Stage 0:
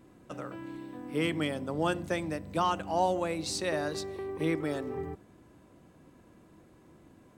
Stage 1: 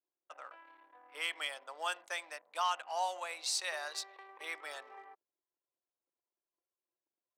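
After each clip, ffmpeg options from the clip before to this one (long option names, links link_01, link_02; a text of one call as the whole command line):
ffmpeg -i in.wav -af "anlmdn=0.0398,highpass=frequency=730:width=0.5412,highpass=frequency=730:width=1.3066,adynamicequalizer=threshold=0.00501:dfrequency=1900:dqfactor=0.7:tfrequency=1900:tqfactor=0.7:attack=5:release=100:ratio=0.375:range=2.5:mode=boostabove:tftype=highshelf,volume=-4dB" out.wav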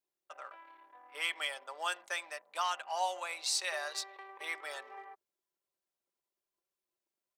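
ffmpeg -i in.wav -af "aecho=1:1:5.1:0.35,volume=1.5dB" out.wav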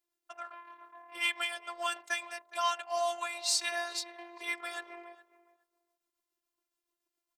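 ffmpeg -i in.wav -filter_complex "[0:a]tremolo=f=7.1:d=0.37,asplit=2[link_01][link_02];[link_02]adelay=415,lowpass=frequency=1500:poles=1,volume=-16.5dB,asplit=2[link_03][link_04];[link_04]adelay=415,lowpass=frequency=1500:poles=1,volume=0.17[link_05];[link_01][link_03][link_05]amix=inputs=3:normalize=0,afftfilt=real='hypot(re,im)*cos(PI*b)':imag='0':win_size=512:overlap=0.75,volume=8dB" out.wav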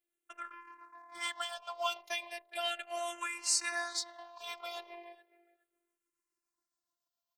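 ffmpeg -i in.wav -filter_complex "[0:a]asplit=2[link_01][link_02];[link_02]aeval=exprs='sgn(val(0))*max(abs(val(0))-0.00531,0)':channel_layout=same,volume=-11dB[link_03];[link_01][link_03]amix=inputs=2:normalize=0,asplit=2[link_04][link_05];[link_05]afreqshift=-0.36[link_06];[link_04][link_06]amix=inputs=2:normalize=1" out.wav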